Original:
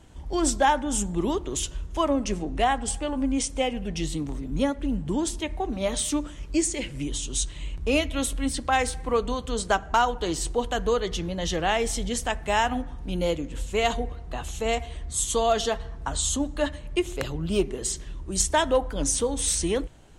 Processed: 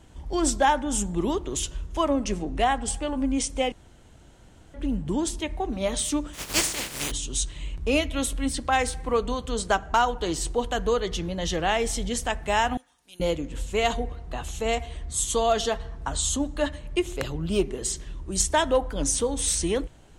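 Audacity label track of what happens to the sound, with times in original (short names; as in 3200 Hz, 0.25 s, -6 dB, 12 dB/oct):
3.720000	4.740000	room tone
6.330000	7.100000	spectral contrast lowered exponent 0.27
12.770000	13.200000	differentiator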